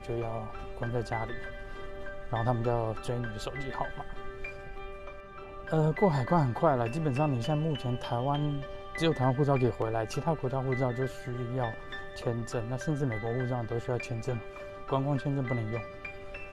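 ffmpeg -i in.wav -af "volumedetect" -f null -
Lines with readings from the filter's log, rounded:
mean_volume: -31.3 dB
max_volume: -11.8 dB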